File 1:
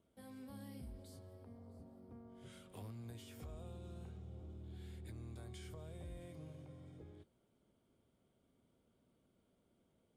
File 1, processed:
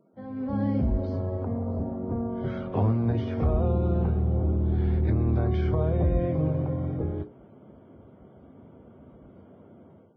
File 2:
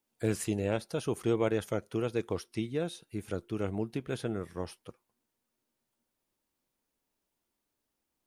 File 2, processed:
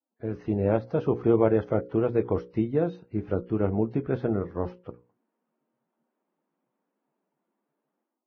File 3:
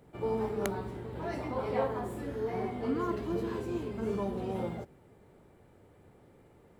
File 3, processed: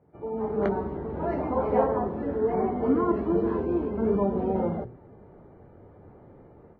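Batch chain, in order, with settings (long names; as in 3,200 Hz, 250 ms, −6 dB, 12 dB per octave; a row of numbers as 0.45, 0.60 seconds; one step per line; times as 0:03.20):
low-pass filter 1,100 Hz 12 dB per octave
mains-hum notches 60/120/180/240/300/360/420/480/540 Hz
automatic gain control gain up to 12.5 dB
Ogg Vorbis 16 kbit/s 16,000 Hz
loudness normalisation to −27 LKFS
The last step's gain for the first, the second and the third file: +14.5, −4.0, −3.0 decibels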